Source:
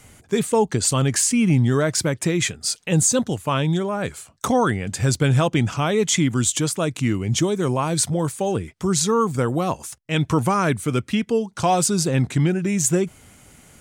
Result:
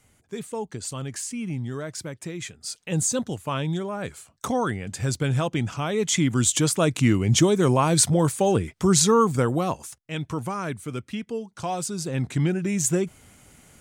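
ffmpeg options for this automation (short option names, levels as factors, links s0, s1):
-af "volume=2.66,afade=t=in:st=2.5:d=0.51:silence=0.446684,afade=t=in:st=5.88:d=1.03:silence=0.398107,afade=t=out:st=9:d=1.2:silence=0.251189,afade=t=in:st=11.99:d=0.47:silence=0.473151"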